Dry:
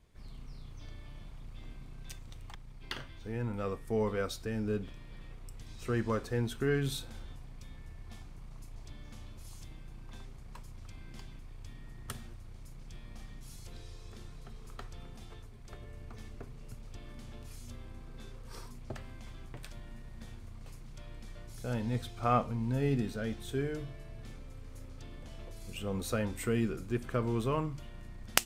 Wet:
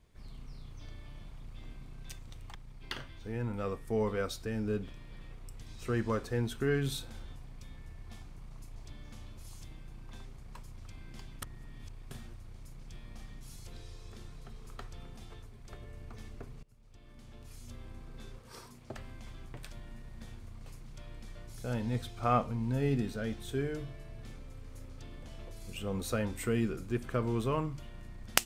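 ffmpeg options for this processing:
-filter_complex "[0:a]asettb=1/sr,asplit=3[s0][s1][s2];[s0]atrim=end=18.384[s3];[s1]atrim=start=18.38:end=18.96,asetpts=PTS-STARTPTS,afade=t=in:d=0.004:c=qsin,afade=t=out:st=0.576:d=0.004:c=qsin,highpass=f=160:p=1[s4];[s2]atrim=start=18.956[s5];[s3][s4]acrossfade=d=0.004:c1=hsin:c2=qsin[s6];[s6][s5]acrossfade=d=0.004:c1=qsin:c2=hsin,asplit=4[s7][s8][s9][s10];[s7]atrim=end=11.422[s11];[s8]atrim=start=11.418:end=12.112,asetpts=PTS-STARTPTS,areverse[s12];[s9]atrim=start=12.108:end=16.63,asetpts=PTS-STARTPTS,afade=t=out:st=4.518:d=0.004:c=hsin:silence=0.0668344[s13];[s10]atrim=start=16.63,asetpts=PTS-STARTPTS,afade=t=in:d=1.24:silence=0.0668344[s14];[s11][s12]acrossfade=d=0.004:c1=hsin:c2=hsin[s15];[s13][s14]concat=n=2:v=0:a=1[s16];[s15][s16]acrossfade=d=0.004:c1=hsin:c2=hsin"

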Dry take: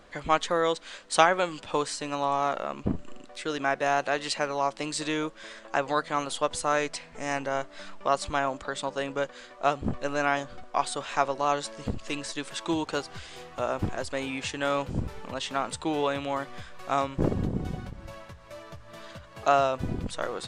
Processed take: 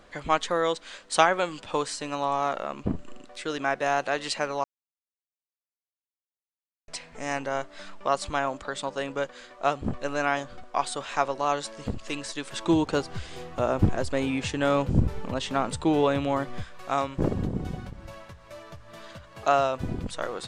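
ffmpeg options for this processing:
-filter_complex "[0:a]asettb=1/sr,asplit=3[s0][s1][s2];[s0]atrim=end=12.534[s3];[s1]atrim=start=12.53:end=16.64,asetpts=PTS-STARTPTS,afade=t=in:d=0.004:c=qsin,afade=t=out:st=4.106:d=0.004:c=qsin,lowshelf=f=490:g=9.5[s4];[s2]atrim=start=16.636[s5];[s3][s4]acrossfade=d=0.004:c1=hsin:c2=qsin[s6];[s6][s5]acrossfade=d=0.004:c1=qsin:c2=hsin,asplit=3[s7][s8][s9];[s7]atrim=end=4.64,asetpts=PTS-STARTPTS,afade=t=out:st=4.636:d=0.004:c=hsin[s10];[s8]atrim=start=4.64:end=6.88,asetpts=PTS-STARTPTS,volume=0[s11];[s9]atrim=start=6.88,asetpts=PTS-STARTPTS,afade=t=in:d=0.004:c=hsin[s12];[s10][s11][s12]concat=n=3:v=0:a=1"

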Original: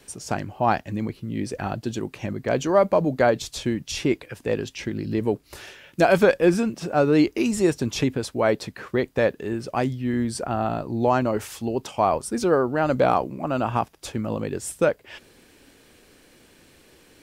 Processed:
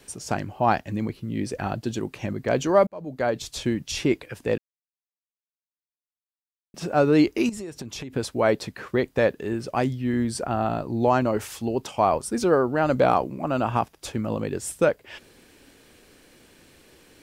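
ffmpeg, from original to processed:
-filter_complex "[0:a]asettb=1/sr,asplit=3[s0][s1][s2];[s0]atrim=end=7.494[s3];[s1]atrim=start=7.49:end=8.13,asetpts=PTS-STARTPTS,afade=t=in:d=0.004:c=qsin,afade=t=out:st=0.636:d=0.004:c=qsin,acompressor=threshold=0.0282:ratio=16:attack=3.2:release=140:knee=1:detection=peak[s4];[s2]atrim=start=8.126[s5];[s3][s4]acrossfade=d=0.004:c1=hsin:c2=qsin[s6];[s6][s5]acrossfade=d=0.004:c1=qsin:c2=hsin,asplit=4[s7][s8][s9][s10];[s7]atrim=end=2.87,asetpts=PTS-STARTPTS,afade=t=out:st=2.866:d=0.004:c=hsin[s11];[s8]atrim=start=2.87:end=4.58,asetpts=PTS-STARTPTS,afade=t=in:d=0.75,afade=t=out:st=1.706:d=0.004:c=hsin[s12];[s9]atrim=start=4.58:end=6.74,asetpts=PTS-STARTPTS,volume=0[s13];[s10]atrim=start=6.74,asetpts=PTS-STARTPTS,afade=t=in:d=0.004:c=hsin[s14];[s11][s12][s13][s14]concat=n=4:v=0:a=1"

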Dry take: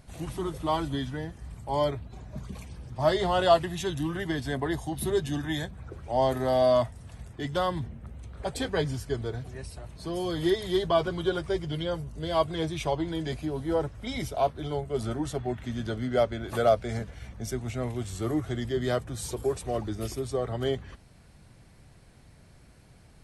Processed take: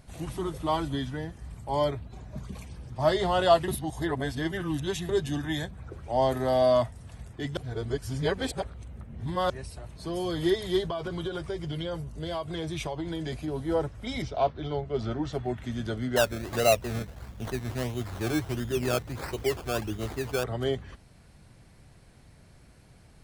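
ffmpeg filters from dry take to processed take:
-filter_complex "[0:a]asettb=1/sr,asplit=3[s0][s1][s2];[s0]atrim=end=10.804[s3];[s1]atrim=start=10.8:end=13.48,asetpts=PTS-STARTPTS,afade=t=in:d=0.004:c=qsin,afade=t=out:st=2.676:d=0.004:c=qsin,acompressor=threshold=0.0398:ratio=10:attack=3.2:release=140:knee=1:detection=peak[s4];[s2]atrim=start=13.476[s5];[s3][s4]acrossfade=d=0.004:c1=hsin:c2=qsin[s6];[s6][s5]acrossfade=d=0.004:c1=qsin:c2=hsin,asettb=1/sr,asplit=3[s7][s8][s9];[s7]atrim=end=14.224[s10];[s8]atrim=start=14.22:end=15.33,asetpts=PTS-STARTPTS,afade=t=in:d=0.004:c=qsin,afade=t=out:st=1.106:d=0.004:c=qsin,lowpass=f=5400:w=0.5412,lowpass=f=5400:w=1.3066[s11];[s9]atrim=start=15.326[s12];[s10][s11]acrossfade=d=0.004:c1=hsin:c2=qsin[s13];[s13][s12]acrossfade=d=0.004:c1=qsin:c2=hsin,asettb=1/sr,asplit=3[s14][s15][s16];[s14]atrim=end=16.164[s17];[s15]atrim=start=16.16:end=20.44,asetpts=PTS-STARTPTS,afade=t=in:d=0.004:c=qsin,afade=t=out:st=4.276:d=0.004:c=qsin,acrusher=samples=18:mix=1:aa=0.000001:lfo=1:lforange=10.8:lforate=1.5[s18];[s16]atrim=start=20.436[s19];[s17][s18]acrossfade=d=0.004:c1=hsin:c2=qsin[s20];[s20][s19]acrossfade=d=0.004:c1=qsin:c2=hsin,asplit=5[s21][s22][s23][s24][s25];[s21]atrim=end=3.682[s26];[s22]atrim=start=3.678:end=5.092,asetpts=PTS-STARTPTS,areverse[s27];[s23]atrim=start=5.088:end=7.572[s28];[s24]atrim=start=7.568:end=9.502,asetpts=PTS-STARTPTS,areverse[s29];[s25]atrim=start=9.498[s30];[s26][s27]acrossfade=d=0.004:c1=hsin:c2=hsin[s31];[s31][s28]acrossfade=d=0.004:c1=hsin:c2=hsin[s32];[s32][s29]acrossfade=d=0.004:c1=hsin:c2=hsin[s33];[s33][s30]acrossfade=d=0.004:c1=hsin:c2=hsin"

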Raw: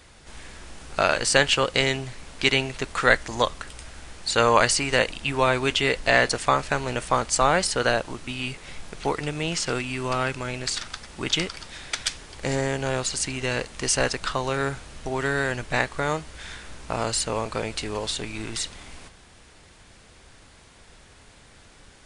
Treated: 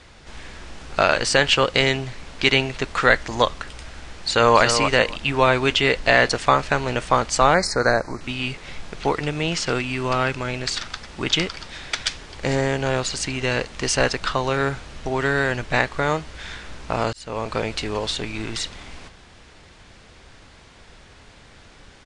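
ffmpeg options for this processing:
-filter_complex "[0:a]asplit=2[s0][s1];[s1]afade=t=in:st=4.17:d=0.01,afade=t=out:st=4.6:d=0.01,aecho=0:1:280|560:0.398107|0.0597161[s2];[s0][s2]amix=inputs=2:normalize=0,asettb=1/sr,asplit=3[s3][s4][s5];[s3]atrim=end=7.544[s6];[s4]atrim=start=7.54:end=8.21,asetpts=PTS-STARTPTS,afade=t=in:d=0.004:c=qsin,afade=t=out:st=0.666:d=0.004:c=qsin,asuperstop=centerf=3100:order=8:qfactor=1.8[s7];[s5]atrim=start=8.206[s8];[s6][s7]acrossfade=d=0.004:c1=hsin:c2=qsin[s9];[s9][s8]acrossfade=d=0.004:c1=qsin:c2=hsin,asplit=2[s10][s11];[s10]atrim=end=17.13,asetpts=PTS-STARTPTS,afade=t=out:st=17.126:d=0.004:c=hsin[s12];[s11]atrim=start=17.13,asetpts=PTS-STARTPTS,afade=t=in:d=0.4[s13];[s12][s13]concat=n=2:v=0:a=1,lowpass=5900,alimiter=level_in=1.78:limit=0.891:release=50:level=0:latency=1,volume=0.891"

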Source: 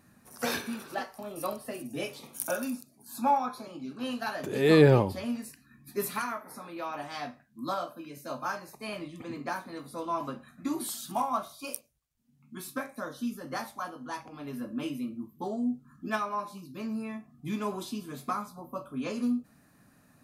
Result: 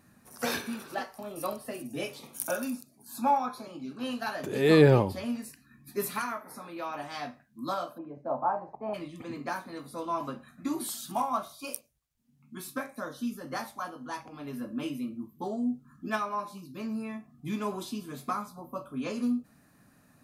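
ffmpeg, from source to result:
-filter_complex "[0:a]asplit=3[s0][s1][s2];[s0]afade=t=out:st=7.97:d=0.02[s3];[s1]lowpass=f=800:t=q:w=4.1,afade=t=in:st=7.97:d=0.02,afade=t=out:st=8.93:d=0.02[s4];[s2]afade=t=in:st=8.93:d=0.02[s5];[s3][s4][s5]amix=inputs=3:normalize=0"

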